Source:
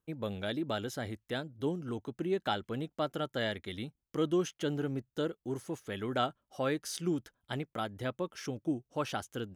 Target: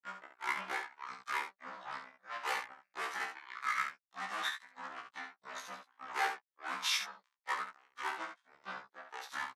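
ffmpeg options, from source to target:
ffmpeg -i in.wav -filter_complex "[0:a]lowpass=11000,bandreject=frequency=4900:width=9.5,asplit=2[link_01][link_02];[link_02]acompressor=threshold=-42dB:ratio=10,volume=-1.5dB[link_03];[link_01][link_03]amix=inputs=2:normalize=0,tremolo=f=1.6:d=0.95,asoftclip=type=tanh:threshold=-33.5dB,aeval=exprs='0.0211*(cos(1*acos(clip(val(0)/0.0211,-1,1)))-cos(1*PI/2))+0.00119*(cos(2*acos(clip(val(0)/0.0211,-1,1)))-cos(2*PI/2))+0.00266*(cos(4*acos(clip(val(0)/0.0211,-1,1)))-cos(4*PI/2))+0.000596*(cos(6*acos(clip(val(0)/0.0211,-1,1)))-cos(6*PI/2))+0.00299*(cos(7*acos(clip(val(0)/0.0211,-1,1)))-cos(7*PI/2))':channel_layout=same,asetrate=26222,aresample=44100,atempo=1.68179,highpass=frequency=1200:width_type=q:width=2.2,asplit=2[link_04][link_05];[link_05]aecho=0:1:27|69:0.376|0.422[link_06];[link_04][link_06]amix=inputs=2:normalize=0,afftfilt=real='re*1.73*eq(mod(b,3),0)':imag='im*1.73*eq(mod(b,3),0)':win_size=2048:overlap=0.75,volume=9.5dB" out.wav

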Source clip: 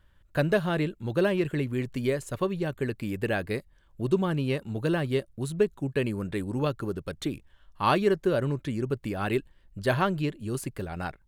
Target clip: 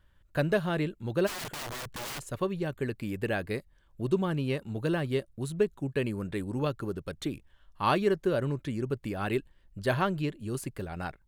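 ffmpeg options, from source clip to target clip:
ffmpeg -i in.wav -filter_complex "[0:a]asplit=3[link_01][link_02][link_03];[link_01]afade=type=out:start_time=1.26:duration=0.02[link_04];[link_02]aeval=exprs='(mod(33.5*val(0)+1,2)-1)/33.5':channel_layout=same,afade=type=in:start_time=1.26:duration=0.02,afade=type=out:start_time=2.22:duration=0.02[link_05];[link_03]afade=type=in:start_time=2.22:duration=0.02[link_06];[link_04][link_05][link_06]amix=inputs=3:normalize=0,volume=-2.5dB" out.wav

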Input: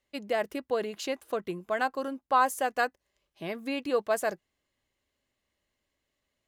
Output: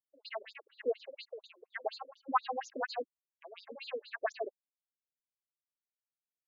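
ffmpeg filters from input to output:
ffmpeg -i in.wav -filter_complex "[0:a]anlmdn=0.251,acrossover=split=680|2600[link_01][link_02][link_03];[link_03]adelay=110[link_04];[link_01]adelay=150[link_05];[link_05][link_02][link_04]amix=inputs=3:normalize=0,afftfilt=real='re*between(b*sr/1024,340*pow(5200/340,0.5+0.5*sin(2*PI*4.2*pts/sr))/1.41,340*pow(5200/340,0.5+0.5*sin(2*PI*4.2*pts/sr))*1.41)':imag='im*between(b*sr/1024,340*pow(5200/340,0.5+0.5*sin(2*PI*4.2*pts/sr))/1.41,340*pow(5200/340,0.5+0.5*sin(2*PI*4.2*pts/sr))*1.41)':win_size=1024:overlap=0.75,volume=1.5dB" out.wav

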